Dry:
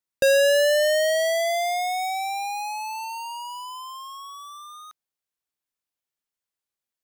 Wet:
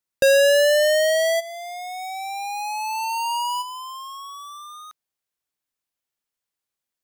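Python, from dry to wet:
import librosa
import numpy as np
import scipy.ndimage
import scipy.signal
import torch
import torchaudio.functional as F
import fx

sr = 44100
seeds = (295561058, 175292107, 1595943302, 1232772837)

y = fx.over_compress(x, sr, threshold_db=-34.0, ratio=-1.0, at=(1.39, 3.61), fade=0.02)
y = F.gain(torch.from_numpy(y), 2.5).numpy()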